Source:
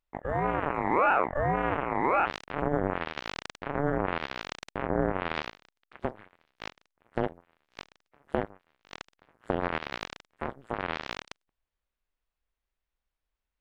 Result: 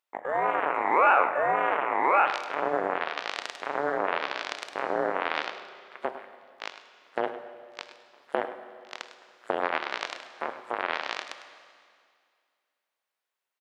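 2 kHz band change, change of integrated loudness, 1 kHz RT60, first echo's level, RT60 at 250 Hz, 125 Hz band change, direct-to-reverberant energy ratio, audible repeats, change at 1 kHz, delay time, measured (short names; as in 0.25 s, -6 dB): +4.5 dB, +3.0 dB, 2.2 s, -13.0 dB, 2.2 s, -17.0 dB, 8.5 dB, 1, +4.0 dB, 0.102 s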